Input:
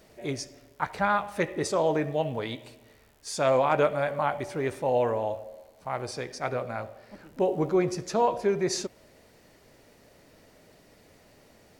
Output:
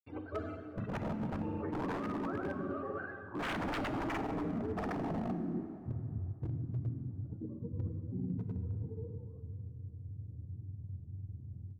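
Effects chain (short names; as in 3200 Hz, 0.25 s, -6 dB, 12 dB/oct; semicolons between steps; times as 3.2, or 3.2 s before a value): spectrum mirrored in octaves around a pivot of 420 Hz; dynamic EQ 280 Hz, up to +4 dB, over -40 dBFS, Q 2.3; low-pass sweep 2400 Hz -> 110 Hz, 2.7–5.56; delay with a stepping band-pass 0.245 s, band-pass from 210 Hz, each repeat 1.4 oct, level -4 dB; in parallel at +2 dB: level quantiser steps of 20 dB; on the sum: grains 0.1 s, grains 20/s, pitch spread up and down by 0 st; wavefolder -22 dBFS; reverse; compressor 6:1, threshold -44 dBFS, peak gain reduction 17.5 dB; reverse; plate-style reverb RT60 3 s, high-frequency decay 0.55×, DRR 8 dB; gain +7 dB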